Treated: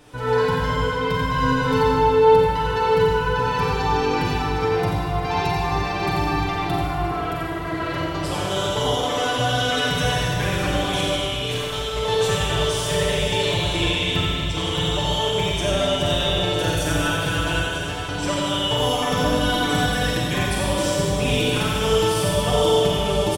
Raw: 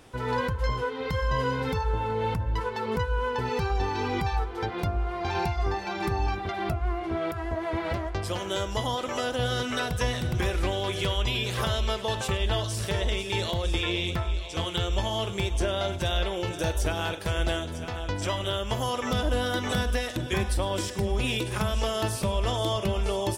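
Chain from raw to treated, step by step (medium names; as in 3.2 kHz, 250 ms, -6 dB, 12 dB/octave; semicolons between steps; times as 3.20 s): comb 6.8 ms, depth 78%; 10.93–12.00 s: compressor with a negative ratio -30 dBFS, ratio -0.5; delay 88 ms -5 dB; reverberation RT60 2.3 s, pre-delay 34 ms, DRR -3.5 dB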